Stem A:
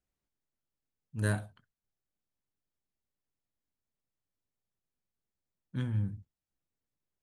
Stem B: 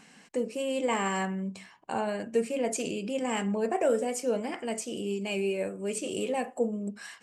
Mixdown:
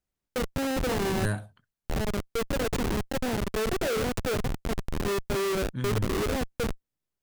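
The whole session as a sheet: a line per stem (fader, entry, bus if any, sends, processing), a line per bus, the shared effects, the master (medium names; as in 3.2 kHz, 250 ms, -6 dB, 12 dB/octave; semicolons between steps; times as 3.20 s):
+1.0 dB, 0.00 s, no send, none
-0.5 dB, 0.00 s, no send, fifteen-band graphic EQ 100 Hz -8 dB, 400 Hz +9 dB, 4 kHz +10 dB; Schmitt trigger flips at -24 dBFS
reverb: none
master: none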